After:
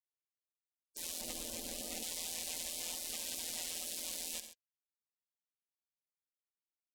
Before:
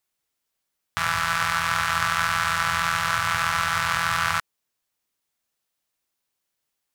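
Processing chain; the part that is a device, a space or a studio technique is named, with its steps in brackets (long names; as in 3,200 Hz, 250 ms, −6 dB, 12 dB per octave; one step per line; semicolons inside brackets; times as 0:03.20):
gate on every frequency bin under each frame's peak −25 dB weak
0:01.21–0:02.03: tilt shelving filter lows +5.5 dB, about 780 Hz
multi-tap delay 70/83/133 ms −16/−17.5/−18 dB
clipper into limiter (hard clipping −19.5 dBFS, distortion −25 dB; brickwall limiter −24 dBFS, peak gain reduction 4.5 dB)
level +1 dB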